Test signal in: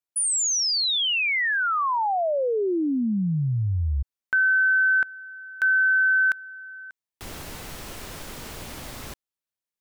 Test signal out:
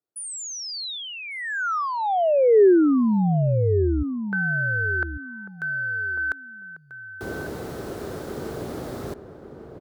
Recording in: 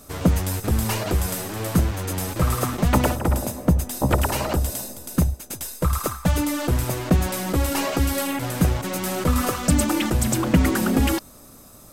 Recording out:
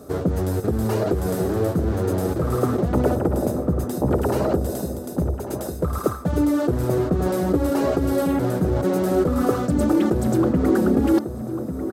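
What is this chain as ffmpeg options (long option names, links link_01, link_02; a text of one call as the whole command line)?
ffmpeg -i in.wav -filter_complex "[0:a]areverse,acompressor=threshold=-26dB:ratio=6:attack=22:release=95:knee=6:detection=peak,areverse,highpass=80,highshelf=frequency=1700:width_type=q:width=1.5:gain=-13,acontrast=65,equalizer=frequency=400:width_type=o:width=0.67:gain=8,equalizer=frequency=1000:width_type=o:width=0.67:gain=-10,equalizer=frequency=4000:width_type=o:width=0.67:gain=4,asplit=2[link_01][link_02];[link_02]adelay=1146,lowpass=frequency=1100:poles=1,volume=-8.5dB,asplit=2[link_03][link_04];[link_04]adelay=1146,lowpass=frequency=1100:poles=1,volume=0.23,asplit=2[link_05][link_06];[link_06]adelay=1146,lowpass=frequency=1100:poles=1,volume=0.23[link_07];[link_01][link_03][link_05][link_07]amix=inputs=4:normalize=0" out.wav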